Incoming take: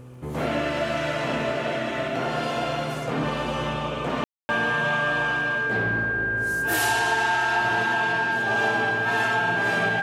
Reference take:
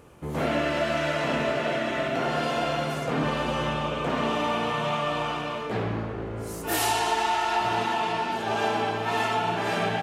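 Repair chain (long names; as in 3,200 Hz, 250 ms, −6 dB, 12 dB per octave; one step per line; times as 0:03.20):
click removal
hum removal 125.1 Hz, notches 4
notch filter 1,600 Hz, Q 30
ambience match 0:04.24–0:04.49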